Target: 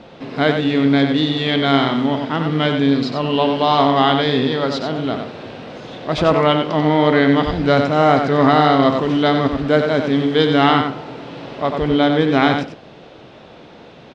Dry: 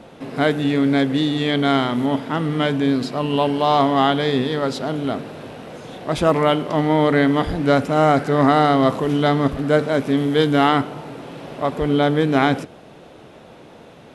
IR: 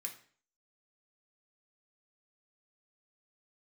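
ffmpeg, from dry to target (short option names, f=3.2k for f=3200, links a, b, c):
-filter_complex "[0:a]lowpass=f=4.8k:w=0.5412,lowpass=f=4.8k:w=1.3066,aemphasis=mode=production:type=50fm,asplit=2[a][b];[b]adelay=93.29,volume=-6dB,highshelf=f=4k:g=-2.1[c];[a][c]amix=inputs=2:normalize=0,volume=1.5dB"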